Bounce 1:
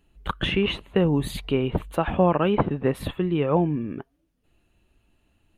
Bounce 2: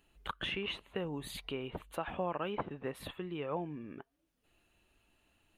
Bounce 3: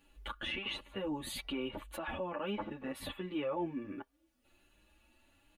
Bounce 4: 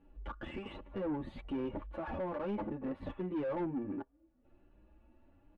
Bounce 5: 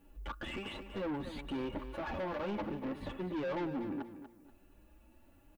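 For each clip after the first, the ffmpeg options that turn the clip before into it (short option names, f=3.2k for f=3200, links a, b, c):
-af "acompressor=threshold=-49dB:ratio=1.5,lowshelf=f=380:g=-11"
-filter_complex "[0:a]aecho=1:1:3.5:0.63,alimiter=level_in=7.5dB:limit=-24dB:level=0:latency=1:release=22,volume=-7.5dB,asplit=2[a][b];[b]adelay=8.2,afreqshift=1.3[c];[a][c]amix=inputs=2:normalize=1,volume=5dB"
-af "asoftclip=type=tanh:threshold=-38dB,adynamicsmooth=sensitivity=2:basefreq=870,volume=7dB"
-filter_complex "[0:a]asoftclip=type=tanh:threshold=-33.5dB,crystalizer=i=4.5:c=0,asplit=2[a][b];[b]aecho=0:1:240|480|720:0.282|0.0789|0.0221[c];[a][c]amix=inputs=2:normalize=0,volume=1dB"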